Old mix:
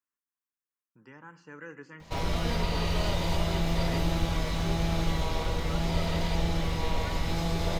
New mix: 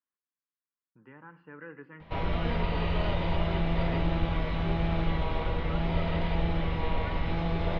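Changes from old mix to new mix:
speech: add air absorption 240 m; master: add LPF 3100 Hz 24 dB/oct

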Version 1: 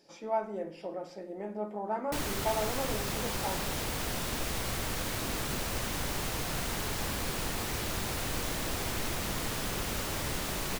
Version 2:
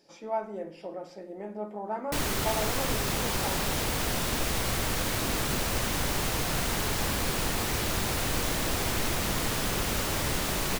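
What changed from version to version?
background +5.0 dB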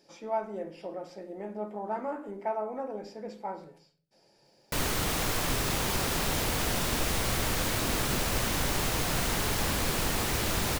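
background: entry +2.60 s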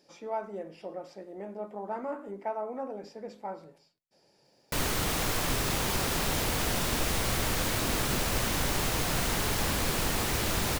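reverb: off

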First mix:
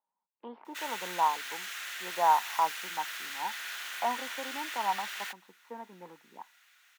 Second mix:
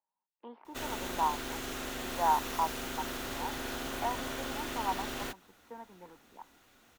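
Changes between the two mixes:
speech -3.5 dB; background: remove resonant high-pass 1800 Hz, resonance Q 1.8

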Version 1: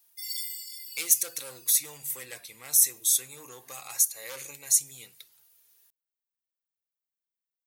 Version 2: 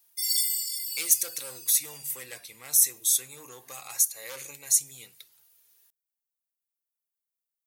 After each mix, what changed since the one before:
background: add bell 8800 Hz +12 dB 2.2 oct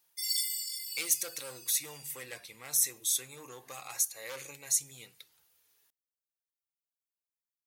master: add high shelf 6000 Hz -9.5 dB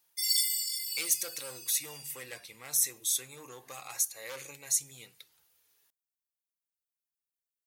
background +4.0 dB

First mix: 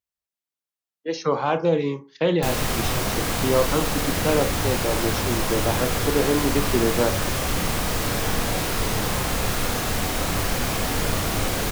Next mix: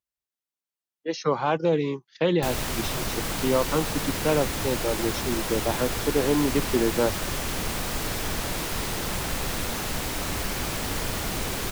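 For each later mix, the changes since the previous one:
reverb: off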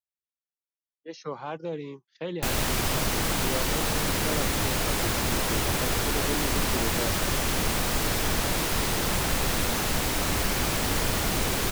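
speech -11.0 dB; background +3.0 dB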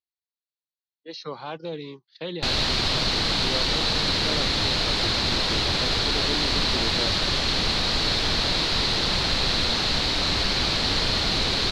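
master: add synth low-pass 4200 Hz, resonance Q 5.5

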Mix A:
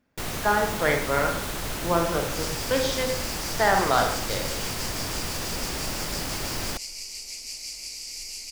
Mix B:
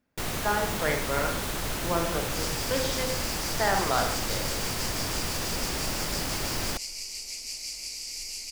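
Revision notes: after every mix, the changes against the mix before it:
speech -5.0 dB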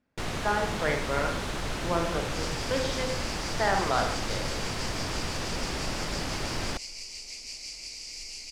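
master: add air absorption 68 m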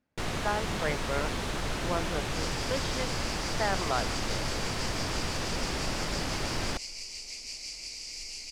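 speech: send off

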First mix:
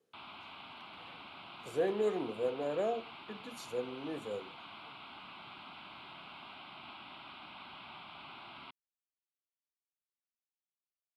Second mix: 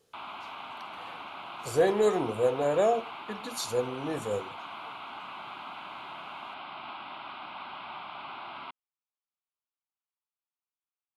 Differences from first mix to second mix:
speech: remove three-band isolator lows -22 dB, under 190 Hz, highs -15 dB, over 2200 Hz; master: add bell 920 Hz +11 dB 2.9 oct

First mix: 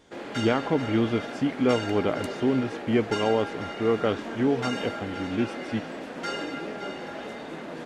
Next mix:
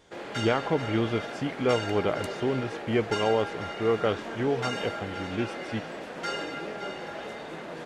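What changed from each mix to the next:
master: add bell 260 Hz -8 dB 0.52 oct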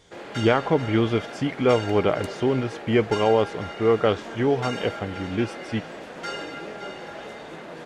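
speech +5.5 dB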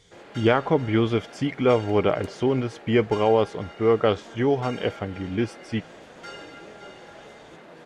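background -7.5 dB

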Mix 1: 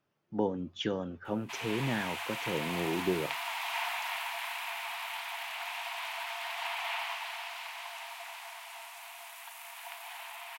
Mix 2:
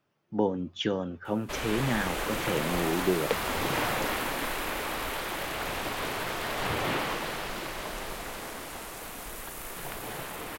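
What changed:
speech +4.0 dB; background: remove rippled Chebyshev high-pass 660 Hz, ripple 9 dB

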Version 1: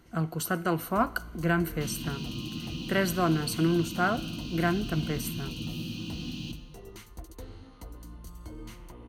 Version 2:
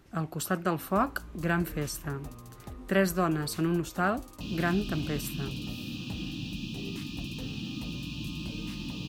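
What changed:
speech: send off; second sound: entry +2.60 s; master: remove ripple EQ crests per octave 1.9, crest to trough 7 dB

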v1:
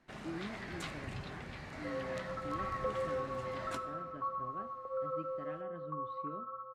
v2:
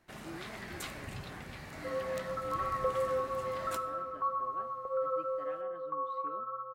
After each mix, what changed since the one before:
speech: add HPF 370 Hz 12 dB/oct; second sound +4.5 dB; master: remove air absorption 65 m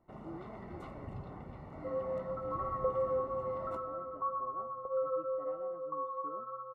master: add polynomial smoothing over 65 samples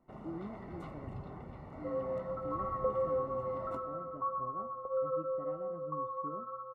speech: remove HPF 370 Hz 12 dB/oct

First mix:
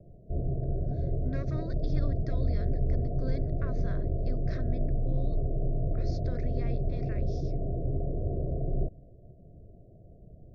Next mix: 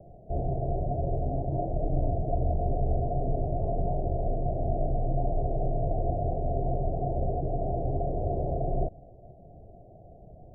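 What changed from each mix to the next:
speech: add vocal tract filter u; master: remove fixed phaser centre 3000 Hz, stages 6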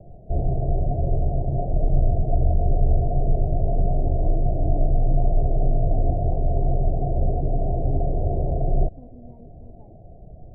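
speech: entry +2.70 s; master: add tilt -2 dB/oct

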